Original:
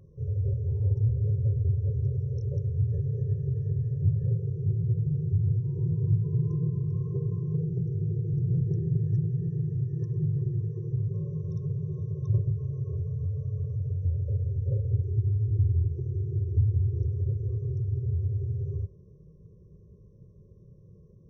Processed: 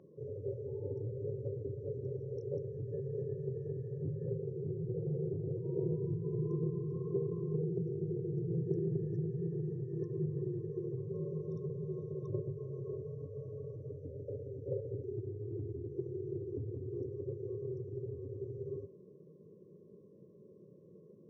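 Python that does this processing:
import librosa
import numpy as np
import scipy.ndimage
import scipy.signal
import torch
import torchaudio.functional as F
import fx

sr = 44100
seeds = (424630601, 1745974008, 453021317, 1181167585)

y = fx.peak_eq(x, sr, hz=590.0, db=11.0, octaves=0.77, at=(4.94, 5.97))
y = scipy.signal.sosfilt(scipy.signal.butter(4, 260.0, 'highpass', fs=sr, output='sos'), y)
y = fx.tilt_eq(y, sr, slope=-4.0)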